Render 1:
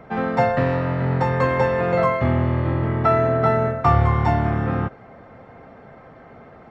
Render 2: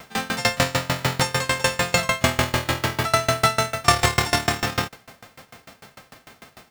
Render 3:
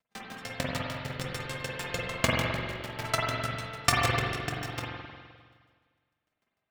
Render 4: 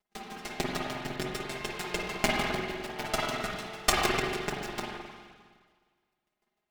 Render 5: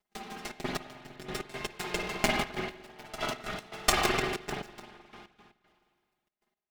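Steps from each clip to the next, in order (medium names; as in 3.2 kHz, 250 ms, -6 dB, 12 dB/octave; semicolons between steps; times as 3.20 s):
formants flattened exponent 0.3; sawtooth tremolo in dB decaying 6.7 Hz, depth 25 dB; trim +4.5 dB
rotary cabinet horn 5 Hz, later 1.2 Hz, at 1.36 s; power-law waveshaper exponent 2; spring tank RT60 1.7 s, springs 43/51 ms, chirp 55 ms, DRR -3.5 dB
comb filter that takes the minimum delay 4.8 ms; small resonant body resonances 350/750 Hz, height 11 dB, ringing for 55 ms
trance gate "xxxx.x....x.x.x" 117 bpm -12 dB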